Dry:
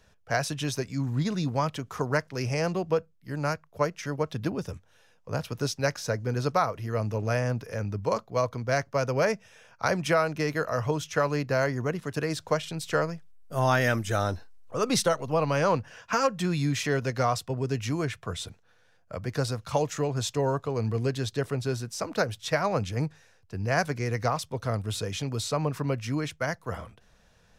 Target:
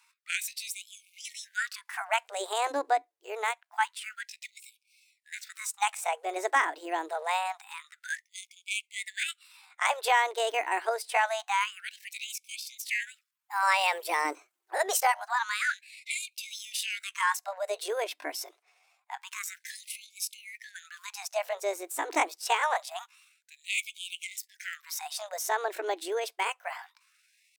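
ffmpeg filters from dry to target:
-af "asetrate=66075,aresample=44100,atempo=0.66742,afftfilt=real='re*gte(b*sr/1024,290*pow(2200/290,0.5+0.5*sin(2*PI*0.26*pts/sr)))':imag='im*gte(b*sr/1024,290*pow(2200/290,0.5+0.5*sin(2*PI*0.26*pts/sr)))':win_size=1024:overlap=0.75"

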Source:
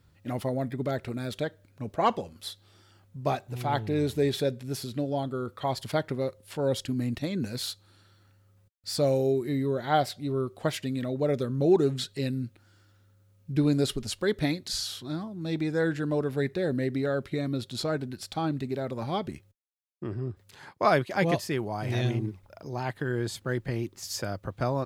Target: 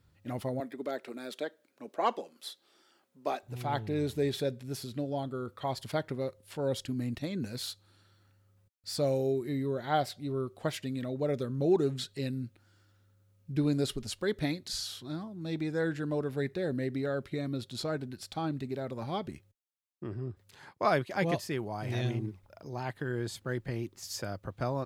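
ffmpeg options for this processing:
-filter_complex "[0:a]asettb=1/sr,asplit=3[a][b][c];[a]atrim=end=0.604[d];[b]atrim=start=0.6:end=3.43,asetpts=PTS-STARTPTS,afade=t=in:d=0.004:c=qsin,afade=t=out:st=2.826:d=0.004:c=qsin,highpass=f=260:w=0.5412,highpass=f=260:w=1.3066[e];[c]atrim=start=3.426[f];[d][e]acrossfade=d=0.004:c1=hsin:c2=qsin[g];[g][f]acrossfade=d=0.004:c1=qsin:c2=hsin,volume=-4.5dB"

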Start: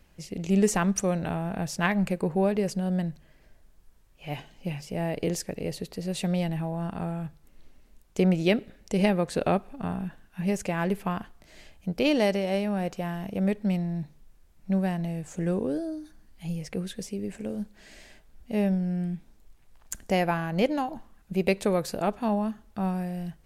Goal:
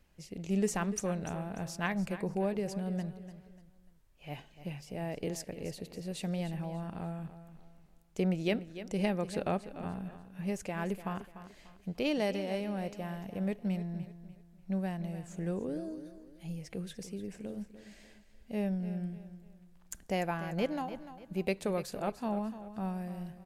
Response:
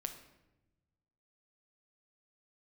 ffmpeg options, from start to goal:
-af "aecho=1:1:295|590|885:0.224|0.0784|0.0274,volume=-8dB"

